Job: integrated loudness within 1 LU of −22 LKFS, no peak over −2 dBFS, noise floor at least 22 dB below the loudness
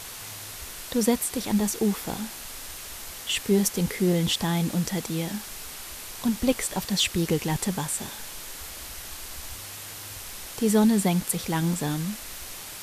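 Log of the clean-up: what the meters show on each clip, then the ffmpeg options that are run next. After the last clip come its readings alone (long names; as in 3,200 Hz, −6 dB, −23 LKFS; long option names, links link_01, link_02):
background noise floor −40 dBFS; target noise floor −50 dBFS; integrated loudness −27.5 LKFS; sample peak −8.5 dBFS; target loudness −22.0 LKFS
→ -af "afftdn=noise_reduction=10:noise_floor=-40"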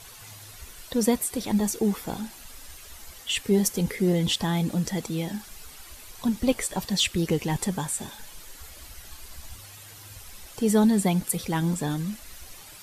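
background noise floor −46 dBFS; target noise floor −48 dBFS
→ -af "afftdn=noise_reduction=6:noise_floor=-46"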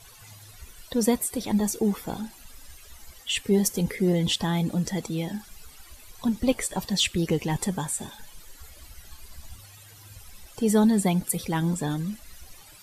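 background noise floor −50 dBFS; integrated loudness −26.0 LKFS; sample peak −9.0 dBFS; target loudness −22.0 LKFS
→ -af "volume=4dB"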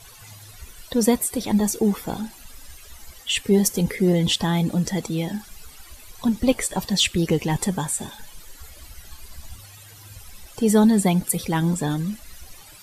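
integrated loudness −22.0 LKFS; sample peak −5.0 dBFS; background noise floor −46 dBFS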